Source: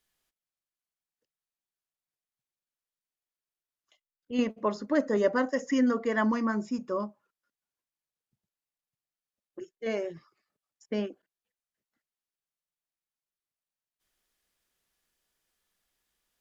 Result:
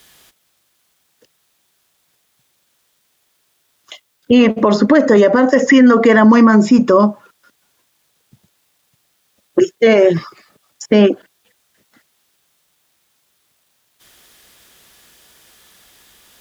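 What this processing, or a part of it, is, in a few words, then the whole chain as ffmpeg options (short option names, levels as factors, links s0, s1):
mastering chain: -filter_complex "[0:a]highpass=54,equalizer=f=3500:t=o:w=0.3:g=3.5,acrossover=split=790|3500[s0][s1][s2];[s0]acompressor=threshold=0.0501:ratio=4[s3];[s1]acompressor=threshold=0.02:ratio=4[s4];[s2]acompressor=threshold=0.00112:ratio=4[s5];[s3][s4][s5]amix=inputs=3:normalize=0,acompressor=threshold=0.0141:ratio=1.5,alimiter=level_in=37.6:limit=0.891:release=50:level=0:latency=1,volume=0.891"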